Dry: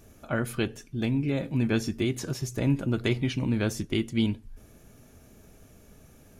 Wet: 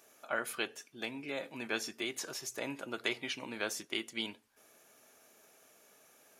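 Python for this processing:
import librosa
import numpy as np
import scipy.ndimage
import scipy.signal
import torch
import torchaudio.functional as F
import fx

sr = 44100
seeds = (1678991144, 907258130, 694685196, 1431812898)

y = scipy.signal.sosfilt(scipy.signal.butter(2, 640.0, 'highpass', fs=sr, output='sos'), x)
y = y * librosa.db_to_amplitude(-1.5)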